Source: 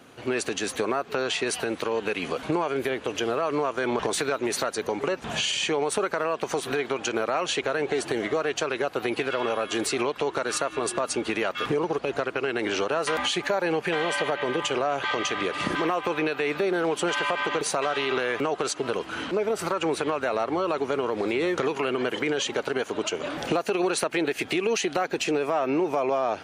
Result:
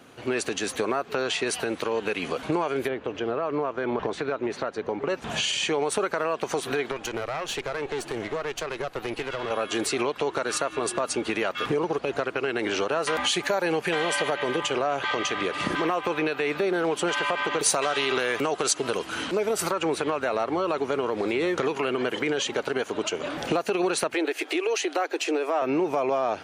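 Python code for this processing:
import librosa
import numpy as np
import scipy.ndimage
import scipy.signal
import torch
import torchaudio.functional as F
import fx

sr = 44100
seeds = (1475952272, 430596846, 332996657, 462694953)

y = fx.spacing_loss(x, sr, db_at_10k=25, at=(2.87, 5.08), fade=0.02)
y = fx.tube_stage(y, sr, drive_db=23.0, bias=0.7, at=(6.91, 9.51))
y = fx.high_shelf(y, sr, hz=6100.0, db=8.5, at=(13.26, 14.59))
y = fx.high_shelf(y, sr, hz=4800.0, db=11.0, at=(17.59, 19.71))
y = fx.ellip_highpass(y, sr, hz=300.0, order=4, stop_db=40, at=(24.14, 25.62))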